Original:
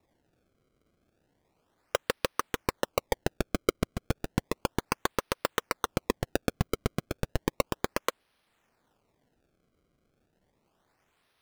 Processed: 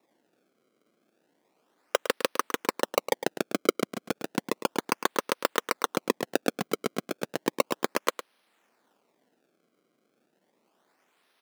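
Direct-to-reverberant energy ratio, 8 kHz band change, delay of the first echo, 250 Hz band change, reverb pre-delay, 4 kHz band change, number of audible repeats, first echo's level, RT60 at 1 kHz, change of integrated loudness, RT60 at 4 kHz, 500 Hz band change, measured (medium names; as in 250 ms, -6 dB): no reverb, +3.5 dB, 107 ms, +2.0 dB, no reverb, +3.5 dB, 1, -12.0 dB, no reverb, +2.5 dB, no reverb, +3.0 dB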